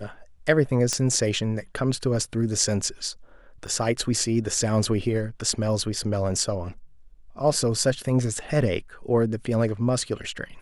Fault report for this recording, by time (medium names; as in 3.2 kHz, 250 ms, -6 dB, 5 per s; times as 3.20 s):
0.93 s: pop -10 dBFS
3.67 s: dropout 4.5 ms